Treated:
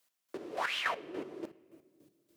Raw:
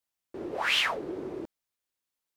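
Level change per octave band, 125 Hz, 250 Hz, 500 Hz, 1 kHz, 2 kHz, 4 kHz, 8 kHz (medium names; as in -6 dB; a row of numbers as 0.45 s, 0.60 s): -10.0 dB, -6.0 dB, -5.0 dB, -3.0 dB, -6.5 dB, -10.5 dB, -9.0 dB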